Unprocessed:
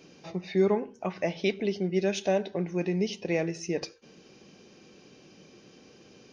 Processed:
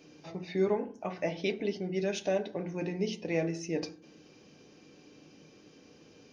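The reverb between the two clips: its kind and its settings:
feedback delay network reverb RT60 0.43 s, low-frequency decay 1.5×, high-frequency decay 0.35×, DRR 6.5 dB
level −4 dB

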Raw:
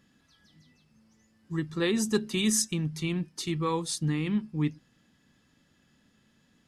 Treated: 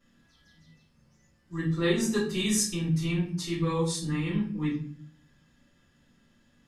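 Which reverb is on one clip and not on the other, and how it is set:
rectangular room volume 51 cubic metres, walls mixed, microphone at 2.7 metres
level −12 dB

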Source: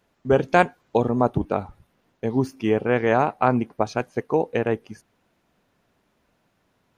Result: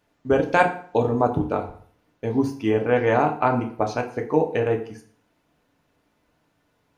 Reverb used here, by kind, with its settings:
feedback delay network reverb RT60 0.51 s, low-frequency decay 0.95×, high-frequency decay 0.8×, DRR 2.5 dB
level −2 dB

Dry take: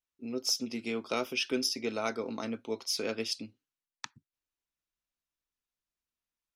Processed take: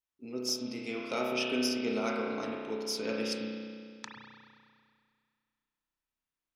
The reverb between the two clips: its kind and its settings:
spring reverb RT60 2.1 s, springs 32 ms, chirp 75 ms, DRR −2.5 dB
level −3.5 dB

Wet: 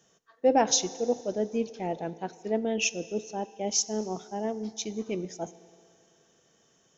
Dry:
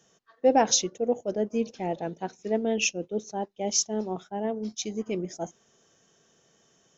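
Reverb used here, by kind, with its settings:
feedback delay network reverb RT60 2.4 s, low-frequency decay 0.75×, high-frequency decay 0.95×, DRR 16 dB
level −1.5 dB

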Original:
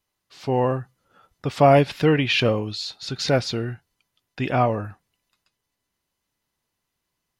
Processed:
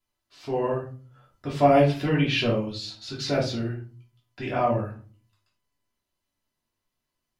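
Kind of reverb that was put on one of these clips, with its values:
rectangular room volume 240 cubic metres, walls furnished, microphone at 3 metres
level −10 dB

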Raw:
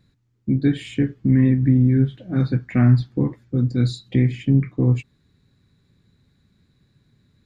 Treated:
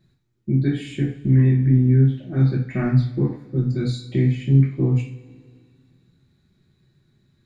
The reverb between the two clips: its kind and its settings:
coupled-rooms reverb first 0.38 s, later 2.2 s, from −21 dB, DRR −2 dB
level −5.5 dB

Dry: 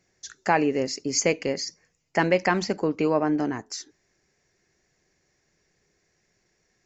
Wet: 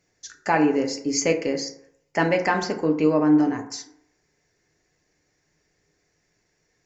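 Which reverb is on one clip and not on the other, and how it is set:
feedback delay network reverb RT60 0.71 s, low-frequency decay 0.8×, high-frequency decay 0.4×, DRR 3.5 dB
level −1 dB

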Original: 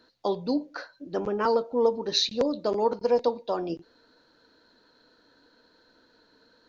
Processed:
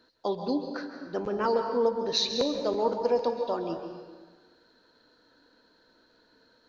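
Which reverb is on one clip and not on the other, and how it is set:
dense smooth reverb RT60 1.4 s, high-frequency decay 0.8×, pre-delay 120 ms, DRR 5.5 dB
level −2.5 dB

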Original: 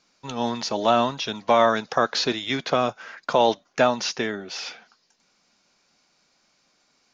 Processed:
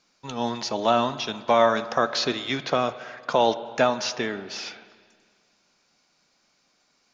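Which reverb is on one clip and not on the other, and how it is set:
spring reverb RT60 1.9 s, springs 31/43/50 ms, chirp 30 ms, DRR 13 dB
level −1.5 dB

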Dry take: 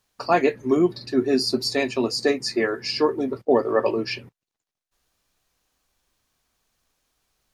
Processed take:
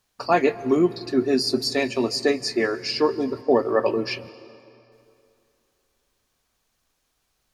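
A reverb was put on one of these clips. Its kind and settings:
dense smooth reverb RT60 2.8 s, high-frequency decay 0.75×, pre-delay 120 ms, DRR 18 dB

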